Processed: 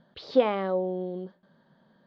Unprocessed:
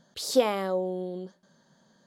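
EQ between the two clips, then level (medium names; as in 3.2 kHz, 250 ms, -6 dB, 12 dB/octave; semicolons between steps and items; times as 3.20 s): low-pass 4.3 kHz 24 dB/octave; distance through air 220 m; +1.5 dB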